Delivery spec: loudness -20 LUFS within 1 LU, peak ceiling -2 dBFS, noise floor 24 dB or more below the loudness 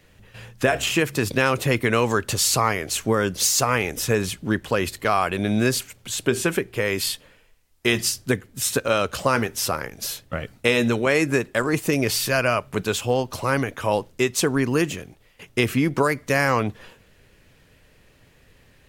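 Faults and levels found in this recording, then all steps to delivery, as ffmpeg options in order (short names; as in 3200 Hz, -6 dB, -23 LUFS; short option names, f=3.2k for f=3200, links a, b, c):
loudness -22.5 LUFS; peak -2.5 dBFS; loudness target -20.0 LUFS
-> -af "volume=2.5dB,alimiter=limit=-2dB:level=0:latency=1"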